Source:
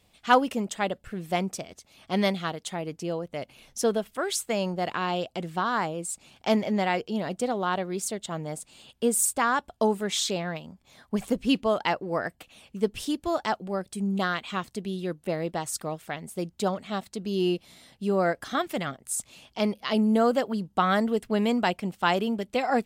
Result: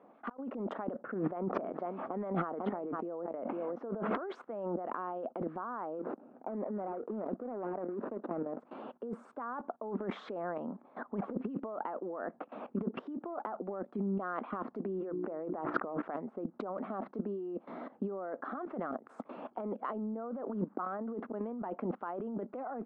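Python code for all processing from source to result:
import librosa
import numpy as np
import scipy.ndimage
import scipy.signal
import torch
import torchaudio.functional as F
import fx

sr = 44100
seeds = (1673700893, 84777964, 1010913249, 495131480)

y = fx.chain(x, sr, fx.lowpass(hz=2900.0, slope=12),
    fx.echo_single(ms=498, db=-20.5),
    fx.sustainer(db_per_s=36.0), at=(0.99, 4.29))
y = fx.chain(y, sr, fx.median_filter(points=41),
    fx.highpass(hz=120.0, slope=12), at=(5.99, 8.6))
y = fx.chain(y, sr, fx.lowpass(hz=2800.0, slope=24),
    fx.hum_notches(base_hz=60, count=6),
    fx.env_flatten(amount_pct=70), at=(14.85, 16.02))
y = fx.chain(y, sr, fx.cvsd(bps=64000),
    fx.lowpass(hz=7600.0, slope=12),
    fx.auto_swell(attack_ms=331.0), at=(20.27, 21.72))
y = fx.level_steps(y, sr, step_db=18)
y = scipy.signal.sosfilt(scipy.signal.cheby1(3, 1.0, [240.0, 1300.0], 'bandpass', fs=sr, output='sos'), y)
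y = fx.over_compress(y, sr, threshold_db=-48.0, ratio=-1.0)
y = y * 10.0 ** (10.0 / 20.0)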